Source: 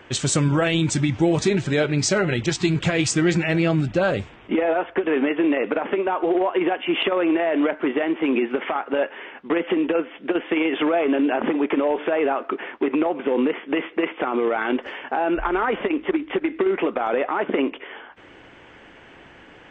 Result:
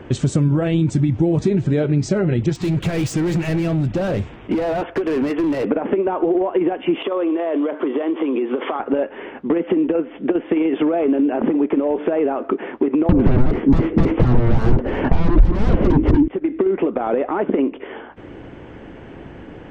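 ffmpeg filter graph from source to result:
ffmpeg -i in.wav -filter_complex "[0:a]asettb=1/sr,asplit=3[link_01][link_02][link_03];[link_01]atrim=end=2.554[link_04];[link_02]atrim=start=2.55:end=5.65,asetpts=PTS-STARTPTS,afade=type=in:duration=0.004:curve=qsin,afade=type=out:start_time=3.096:duration=0.004:curve=qsin,tiltshelf=frequency=850:gain=-4.5,volume=24.5dB,asoftclip=hard,volume=-24.5dB[link_05];[link_03]atrim=start=5.646[link_06];[link_04][link_05]acrossfade=duration=0.004:curve1=hsin:curve2=qsin[link_07];[link_07][link_06]acrossfade=duration=0.004:curve1=qsin:curve2=hsin,asettb=1/sr,asplit=3[link_08][link_09][link_10];[link_08]atrim=end=7.024[link_11];[link_09]atrim=start=7.02:end=8.8,asetpts=PTS-STARTPTS,afade=type=in:duration=0.004:curve=qsin,afade=type=out:start_time=1.776:duration=0.004:curve=qsin,acompressor=threshold=-26dB:ratio=5:attack=3.2:release=140:knee=1:detection=peak,highpass=frequency=210:width=0.5412,highpass=frequency=210:width=1.3066,equalizer=frequency=210:width_type=q:width=4:gain=-8,equalizer=frequency=490:width_type=q:width=4:gain=4,equalizer=frequency=1100:width_type=q:width=4:gain=8,equalizer=frequency=3300:width_type=q:width=4:gain=9,lowpass=frequency=4700:width=0.5412,lowpass=frequency=4700:width=1.3066[link_12];[link_10]atrim=start=8.796[link_13];[link_11][link_12]acrossfade=duration=0.004:curve1=hsin:curve2=qsin[link_14];[link_14][link_13]acrossfade=duration=0.004:curve1=qsin:curve2=hsin,asettb=1/sr,asplit=3[link_15][link_16][link_17];[link_15]atrim=end=13.094[link_18];[link_16]atrim=start=13.09:end=16.28,asetpts=PTS-STARTPTS,afade=type=in:duration=0.004:curve=qsin,afade=type=out:start_time=3.186:duration=0.004:curve=qsin,aeval=exprs='0.316*sin(PI/2*6.31*val(0)/0.316)':channel_layout=same,aemphasis=mode=reproduction:type=riaa[link_19];[link_17]atrim=start=16.276[link_20];[link_18][link_19]acrossfade=duration=0.004:curve1=hsin:curve2=qsin[link_21];[link_21][link_20]acrossfade=duration=0.004:curve1=qsin:curve2=hsin,tiltshelf=frequency=730:gain=9.5,acompressor=threshold=-24dB:ratio=3,volume=6.5dB" out.wav

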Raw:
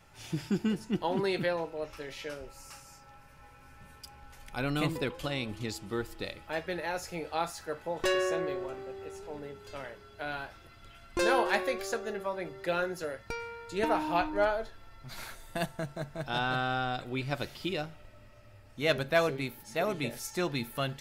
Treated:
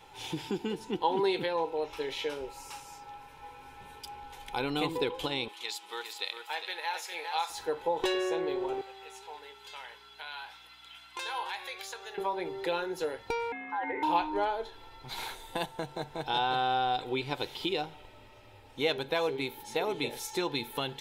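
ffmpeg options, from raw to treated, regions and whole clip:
ffmpeg -i in.wav -filter_complex "[0:a]asettb=1/sr,asplit=3[link_01][link_02][link_03];[link_01]atrim=end=5.484[link_04];[link_02]atrim=start=5.48:end=7.5,asetpts=PTS-STARTPTS,afade=type=in:duration=0.004:curve=qsin,afade=type=out:start_time=2.016:duration=0.004:curve=qsin,highpass=1100,aecho=1:1:404:0.422,atrim=end_sample=89082[link_05];[link_03]atrim=start=7.496[link_06];[link_04][link_05]acrossfade=duration=0.004:curve1=hsin:curve2=qsin[link_07];[link_07][link_06]acrossfade=duration=0.004:curve1=qsin:curve2=hsin,asettb=1/sr,asplit=3[link_08][link_09][link_10];[link_08]atrim=end=8.814[link_11];[link_09]atrim=start=8.81:end=12.18,asetpts=PTS-STARTPTS,afade=type=in:duration=0.004:curve=qsin,afade=type=out:start_time=3.366:duration=0.004:curve=qsin,highpass=1200,acompressor=threshold=-46dB:ratio=2:attack=3.2:release=140:knee=1:detection=peak,aeval=exprs='val(0)+0.000398*(sin(2*PI*60*n/s)+sin(2*PI*2*60*n/s)/2+sin(2*PI*3*60*n/s)/3+sin(2*PI*4*60*n/s)/4+sin(2*PI*5*60*n/s)/5)':channel_layout=same[link_12];[link_10]atrim=start=12.176[link_13];[link_11][link_12]acrossfade=duration=0.004:curve1=hsin:curve2=qsin[link_14];[link_14][link_13]acrossfade=duration=0.004:curve1=qsin:curve2=hsin,asettb=1/sr,asplit=3[link_15][link_16][link_17];[link_15]atrim=end=13.524[link_18];[link_16]atrim=start=13.52:end=14.03,asetpts=PTS-STARTPTS,afade=type=in:duration=0.004:curve=qsin,afade=type=out:start_time=0.506:duration=0.004:curve=qsin,lowpass=frequency=820:width_type=q:width=4.3,acompressor=threshold=-34dB:ratio=5:attack=3.2:release=140:knee=1:detection=peak,aeval=exprs='val(0)*sin(2*PI*1200*n/s)':channel_layout=same[link_19];[link_17]atrim=start=14.026[link_20];[link_18][link_19]acrossfade=duration=0.004:curve1=hsin:curve2=qsin[link_21];[link_21][link_20]acrossfade=duration=0.004:curve1=qsin:curve2=hsin,lowshelf=frequency=450:gain=-5,acompressor=threshold=-39dB:ratio=2,superequalizer=6b=2:7b=3.16:9b=3.55:12b=1.58:13b=2.51,volume=2dB" out.wav

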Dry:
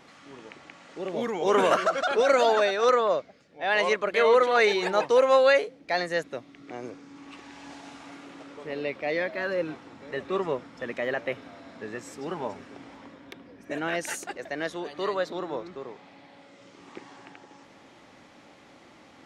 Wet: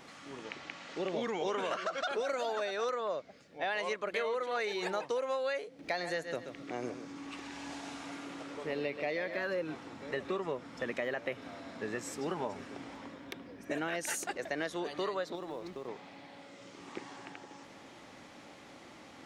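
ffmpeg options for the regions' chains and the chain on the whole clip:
ffmpeg -i in.wav -filter_complex "[0:a]asettb=1/sr,asplit=3[link_01][link_02][link_03];[link_01]atrim=end=0.444[link_04];[link_02]atrim=start=0.44:end=2.09,asetpts=PTS-STARTPTS,afade=type=in:duration=0.004:curve=qsin,afade=type=out:start_time=1.646:duration=0.004:curve=qsin,lowpass=4800,highshelf=frequency=2400:gain=7.5[link_05];[link_03]atrim=start=2.086[link_06];[link_04][link_05]acrossfade=duration=0.004:curve1=hsin:curve2=qsin[link_07];[link_07][link_06]acrossfade=duration=0.004:curve1=qsin:curve2=hsin,asettb=1/sr,asplit=3[link_08][link_09][link_10];[link_08]atrim=end=5.794[link_11];[link_09]atrim=start=5.79:end=9.39,asetpts=PTS-STARTPTS,afade=type=in:duration=0.004:curve=qsin,afade=type=out:start_time=3.596:duration=0.004:curve=qsin,aecho=1:1:131|262|393:0.282|0.062|0.0136,atrim=end_sample=158760,acompressor=mode=upward:threshold=-41dB:ratio=2.5:attack=3.2:release=140:knee=2.83:detection=peak[link_12];[link_10]atrim=start=9.386[link_13];[link_11][link_12]acrossfade=duration=0.004:curve1=hsin:curve2=qsin[link_14];[link_14][link_13]acrossfade=duration=0.004:curve1=qsin:curve2=hsin,asettb=1/sr,asplit=3[link_15][link_16][link_17];[link_15]atrim=end=15.354[link_18];[link_16]atrim=start=15.35:end=15.88,asetpts=PTS-STARTPTS,afade=type=in:duration=0.004:curve=qsin,afade=type=out:start_time=0.526:duration=0.004:curve=qsin,acompressor=threshold=-36dB:ratio=5:attack=3.2:release=140:knee=1:detection=peak,equalizer=frequency=1400:width_type=o:width=0.46:gain=-6.5,aeval=exprs='sgn(val(0))*max(abs(val(0))-0.00126,0)':channel_layout=same[link_19];[link_17]atrim=start=15.876[link_20];[link_18][link_19]acrossfade=duration=0.004:curve1=hsin:curve2=qsin[link_21];[link_21][link_20]acrossfade=duration=0.004:curve1=qsin:curve2=hsin,highshelf=frequency=6600:gain=5,acompressor=threshold=-31dB:ratio=12" out.wav

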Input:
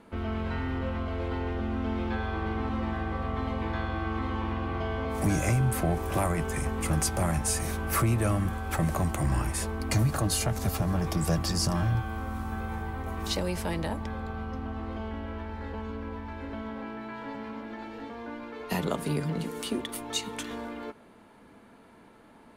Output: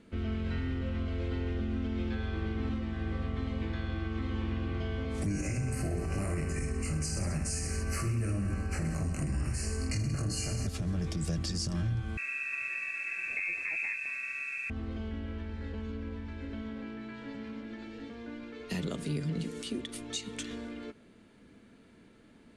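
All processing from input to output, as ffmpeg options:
ffmpeg -i in.wav -filter_complex "[0:a]asettb=1/sr,asplit=3[link_01][link_02][link_03];[link_01]atrim=end=5.264[link_04];[link_02]atrim=start=5.26:end=10.67,asetpts=PTS-STARTPTS,afade=type=in:duration=0.004:curve=qsin,afade=type=out:start_time=5.406:duration=0.004:curve=qsin,asuperstop=centerf=3500:order=12:qfactor=3.1,aecho=1:1:20|46|79.8|123.7|180.9|255.1:0.794|0.631|0.501|0.398|0.316|0.251,atrim=end_sample=238581[link_05];[link_03]atrim=start=10.666[link_06];[link_04][link_05]acrossfade=duration=0.004:curve1=hsin:curve2=qsin[link_07];[link_07][link_06]acrossfade=duration=0.004:curve1=qsin:curve2=hsin,asettb=1/sr,asplit=3[link_08][link_09][link_10];[link_08]atrim=end=12.174[link_11];[link_09]atrim=start=12.17:end=14.7,asetpts=PTS-STARTPTS,afade=type=in:duration=0.004:curve=qsin,afade=type=out:start_time=2.526:duration=0.004:curve=qsin,lowpass=frequency=2300:width_type=q:width=0.5098,lowpass=frequency=2300:width_type=q:width=0.6013,lowpass=frequency=2300:width_type=q:width=0.9,lowpass=frequency=2300:width_type=q:width=2.563,afreqshift=-2700,acrusher=bits=7:mix=0:aa=0.5[link_12];[link_10]atrim=start=14.696[link_13];[link_11][link_12]acrossfade=duration=0.004:curve1=hsin:curve2=qsin[link_14];[link_14][link_13]acrossfade=duration=0.004:curve1=qsin:curve2=hsin,lowpass=frequency=8800:width=0.5412,lowpass=frequency=8800:width=1.3066,equalizer=frequency=900:width_type=o:width=1.3:gain=-15,alimiter=level_in=0.5dB:limit=-24dB:level=0:latency=1:release=143,volume=-0.5dB" out.wav

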